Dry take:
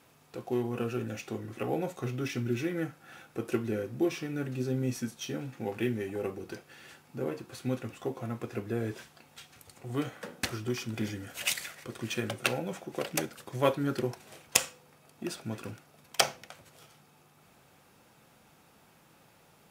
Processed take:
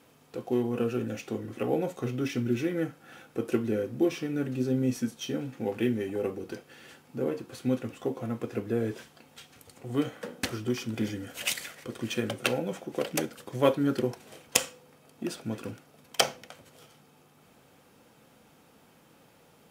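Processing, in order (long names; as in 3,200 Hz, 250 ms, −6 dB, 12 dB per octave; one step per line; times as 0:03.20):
hollow resonant body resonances 260/470/3,100 Hz, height 6 dB, ringing for 25 ms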